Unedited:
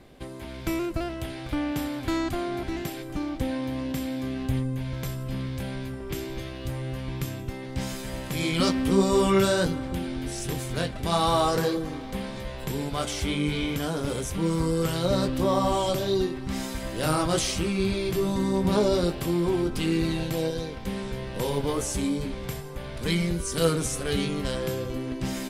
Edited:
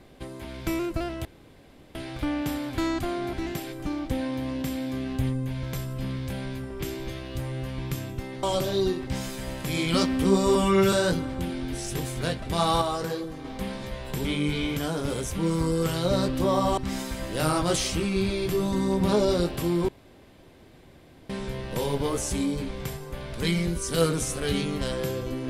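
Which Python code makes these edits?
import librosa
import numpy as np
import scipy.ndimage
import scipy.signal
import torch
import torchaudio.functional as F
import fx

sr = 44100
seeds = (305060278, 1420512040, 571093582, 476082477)

y = fx.edit(x, sr, fx.insert_room_tone(at_s=1.25, length_s=0.7),
    fx.stretch_span(start_s=9.21, length_s=0.25, factor=1.5),
    fx.clip_gain(start_s=11.35, length_s=0.63, db=-5.5),
    fx.cut(start_s=12.78, length_s=0.46),
    fx.move(start_s=15.77, length_s=0.64, to_s=7.73),
    fx.room_tone_fill(start_s=19.52, length_s=1.41), tone=tone)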